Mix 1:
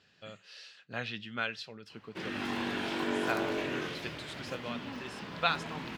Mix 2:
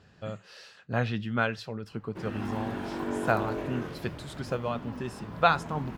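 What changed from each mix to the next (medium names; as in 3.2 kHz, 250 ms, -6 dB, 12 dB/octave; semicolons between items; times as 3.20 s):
speech +10.0 dB; master: remove frequency weighting D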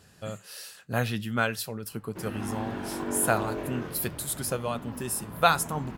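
speech: remove distance through air 170 m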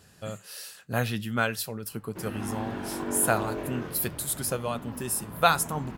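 speech: add treble shelf 8.9 kHz +3.5 dB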